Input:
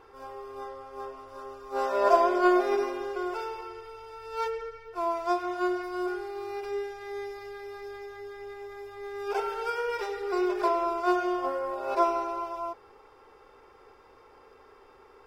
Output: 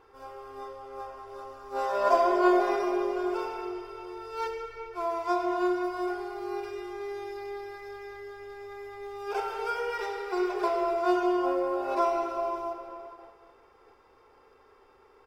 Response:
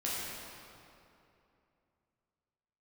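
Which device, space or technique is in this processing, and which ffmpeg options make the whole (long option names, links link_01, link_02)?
keyed gated reverb: -filter_complex "[0:a]asettb=1/sr,asplit=3[link_01][link_02][link_03];[link_01]atrim=end=10.114[link_04];[link_02]atrim=start=10.11:end=10.56,asetpts=PTS-STARTPTS,afade=type=in:duration=0.004:curve=qsin,afade=type=out:start_time=0.446:duration=0.004:curve=qsin,bandreject=frequency=50:width_type=h:width=6,bandreject=frequency=100:width_type=h:width=6[link_05];[link_03]atrim=start=10.556[link_06];[link_04][link_05]acrossfade=duration=0.004:curve1=hsin:curve2=qsin[link_07];[link_07][link_06]acrossfade=duration=0.004:curve1=qsin:curve2=hsin,asplit=2[link_08][link_09];[link_09]adelay=400,lowpass=frequency=2000:poles=1,volume=-16dB,asplit=2[link_10][link_11];[link_11]adelay=400,lowpass=frequency=2000:poles=1,volume=0.43,asplit=2[link_12][link_13];[link_13]adelay=400,lowpass=frequency=2000:poles=1,volume=0.43,asplit=2[link_14][link_15];[link_15]adelay=400,lowpass=frequency=2000:poles=1,volume=0.43[link_16];[link_08][link_10][link_12][link_14][link_16]amix=inputs=5:normalize=0,asplit=3[link_17][link_18][link_19];[1:a]atrim=start_sample=2205[link_20];[link_18][link_20]afir=irnorm=-1:irlink=0[link_21];[link_19]apad=whole_len=743937[link_22];[link_21][link_22]sidechaingate=range=-33dB:threshold=-51dB:ratio=16:detection=peak,volume=-6dB[link_23];[link_17][link_23]amix=inputs=2:normalize=0,volume=-4.5dB"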